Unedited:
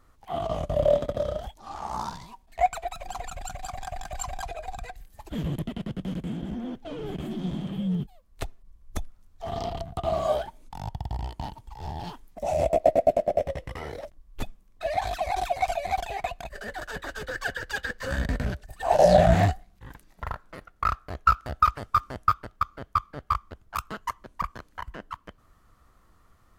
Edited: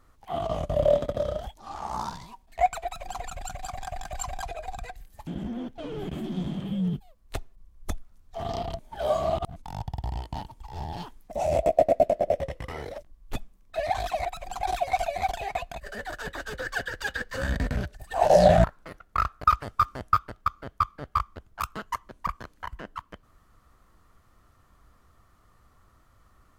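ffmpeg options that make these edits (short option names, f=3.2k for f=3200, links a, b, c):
-filter_complex "[0:a]asplit=8[a][b][c][d][e][f][g][h];[a]atrim=end=5.272[i];[b]atrim=start=6.338:end=9.862[j];[c]atrim=start=9.858:end=10.632,asetpts=PTS-STARTPTS,areverse[k];[d]atrim=start=10.628:end=15.322[l];[e]atrim=start=2.838:end=3.222[m];[f]atrim=start=15.318:end=19.332[n];[g]atrim=start=20.308:end=21.112[o];[h]atrim=start=21.588[p];[i][j]acrossfade=d=0.004:c1=hsin:c2=hsin[q];[q][k]acrossfade=d=0.004:c1=hsin:c2=hsin[r];[r][l]acrossfade=d=0.004:c1=hsin:c2=hsin[s];[s][m]acrossfade=d=0.004:c1=hsin:c2=hsin[t];[t][n]acrossfade=d=0.004:c1=hsin:c2=hsin[u];[u][o]acrossfade=d=0.004:c1=hsin:c2=hsin[v];[v][p]acrossfade=d=0.004:c1=hsin:c2=hsin"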